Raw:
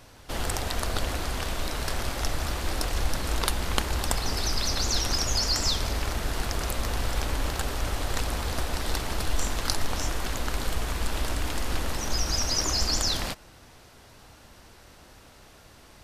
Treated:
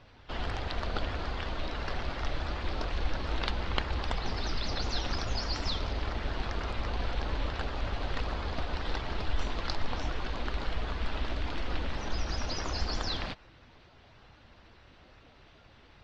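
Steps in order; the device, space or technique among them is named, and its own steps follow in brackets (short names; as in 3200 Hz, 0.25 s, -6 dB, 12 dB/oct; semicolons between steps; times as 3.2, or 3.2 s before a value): clip after many re-uploads (LPF 4200 Hz 24 dB/oct; bin magnitudes rounded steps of 15 dB); gain -4 dB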